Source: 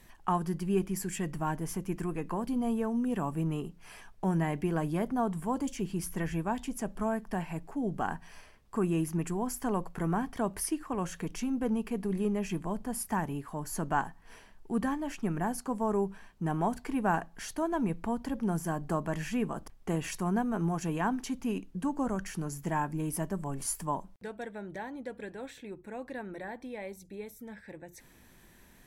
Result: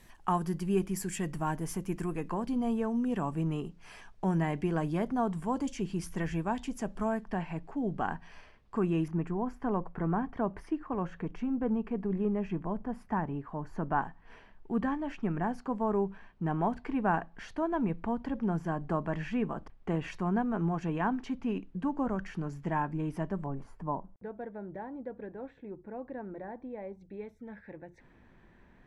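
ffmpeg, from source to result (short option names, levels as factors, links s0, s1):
-af "asetnsamples=n=441:p=0,asendcmd='2.28 lowpass f 6900;7.24 lowpass f 4000;9.08 lowpass f 1700;14.02 lowpass f 2800;23.46 lowpass f 1100;27.01 lowpass f 1900',lowpass=12000"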